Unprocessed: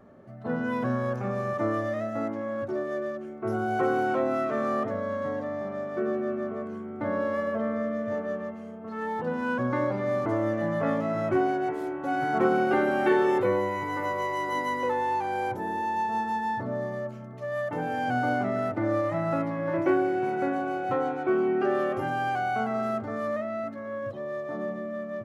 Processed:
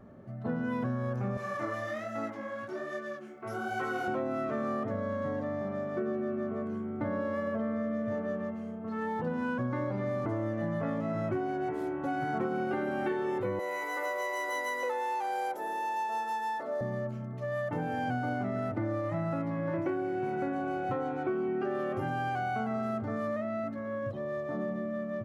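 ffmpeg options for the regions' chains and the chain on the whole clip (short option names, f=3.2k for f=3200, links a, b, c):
-filter_complex "[0:a]asettb=1/sr,asplit=3[a][b][c];[a]atrim=end=1.374[d];[b]atrim=start=1.37:end=4.08,asetpts=PTS-STARTPTS,afade=t=in:d=0.004:c=qsin,afade=t=out:st=2.706:d=0.004:c=qsin,highpass=110,tiltshelf=f=860:g=-8,flanger=delay=18:depth=7.9:speed=1.2[e];[c]atrim=start=4.076[f];[d][e]acrossfade=d=0.004:c1=hsin:c2=qsin[g];[g][f]acrossfade=d=0.004:c1=qsin:c2=hsin,asettb=1/sr,asplit=3[h][i][j];[h]atrim=end=13.594[k];[i]atrim=start=13.59:end=16.81,asetpts=PTS-STARTPTS,afade=t=in:d=0.004:c=qsin,afade=t=out:st=3.216:d=0.004:c=qsin,highpass=f=360:w=0.5412,highpass=f=360:w=1.3066,aemphasis=mode=production:type=cd,aecho=1:1:1.5:0.35,atrim=end_sample=142002[l];[j]atrim=start=16.806[m];[k][l]acrossfade=d=0.004:c1=hsin:c2=qsin[n];[n][m]acrossfade=d=0.004:c1=qsin:c2=hsin,bass=f=250:g=7,treble=f=4k:g=-1,acompressor=threshold=-27dB:ratio=6,volume=-2dB"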